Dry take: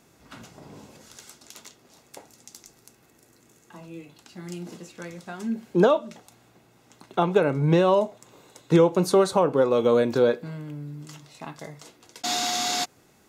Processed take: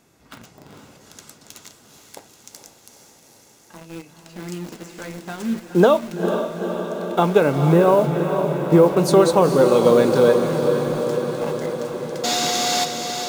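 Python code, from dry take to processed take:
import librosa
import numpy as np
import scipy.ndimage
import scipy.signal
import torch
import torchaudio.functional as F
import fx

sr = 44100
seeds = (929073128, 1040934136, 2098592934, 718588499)

p1 = fx.lowpass(x, sr, hz=1600.0, slope=12, at=(7.72, 8.97))
p2 = fx.quant_dither(p1, sr, seeds[0], bits=6, dither='none')
p3 = p1 + (p2 * librosa.db_to_amplitude(-3.5))
y = fx.echo_diffused(p3, sr, ms=456, feedback_pct=73, wet_db=-7)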